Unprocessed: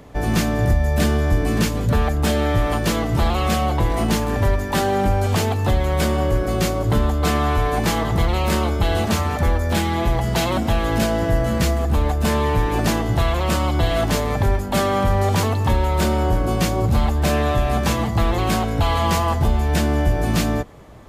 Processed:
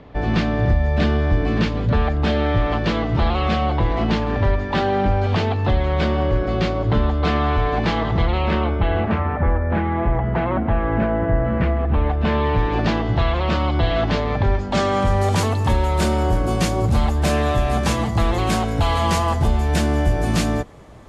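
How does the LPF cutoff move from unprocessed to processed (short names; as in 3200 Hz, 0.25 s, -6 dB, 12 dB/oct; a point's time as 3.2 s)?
LPF 24 dB/oct
8.16 s 4200 Hz
9.38 s 2000 Hz
11.4 s 2000 Hz
12.65 s 4300 Hz
14.44 s 4300 Hz
15.25 s 11000 Hz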